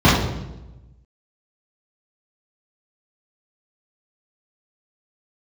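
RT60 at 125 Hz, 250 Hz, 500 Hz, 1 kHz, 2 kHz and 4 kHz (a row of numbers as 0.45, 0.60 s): 1.5, 1.2, 1.1, 0.90, 0.75, 0.75 s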